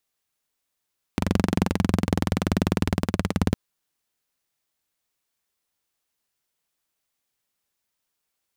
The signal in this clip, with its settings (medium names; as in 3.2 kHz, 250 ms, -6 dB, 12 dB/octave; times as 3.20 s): single-cylinder engine model, changing speed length 2.36 s, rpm 2800, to 2100, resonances 94/180 Hz